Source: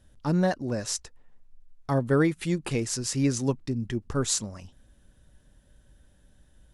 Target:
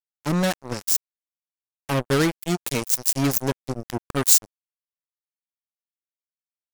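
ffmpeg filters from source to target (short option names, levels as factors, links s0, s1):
-af "acrusher=bits=3:mix=0:aa=0.5,aemphasis=mode=production:type=50fm,volume=1.19"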